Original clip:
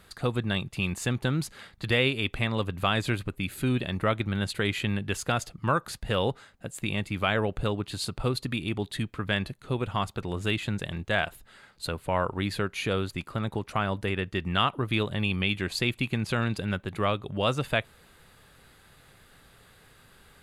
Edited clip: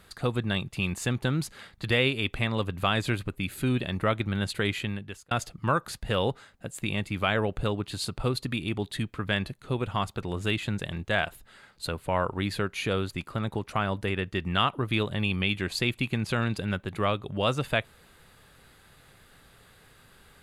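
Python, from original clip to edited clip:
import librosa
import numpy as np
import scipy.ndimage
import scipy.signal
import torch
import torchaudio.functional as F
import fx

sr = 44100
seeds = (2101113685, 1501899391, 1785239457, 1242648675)

y = fx.edit(x, sr, fx.fade_out_span(start_s=4.67, length_s=0.64), tone=tone)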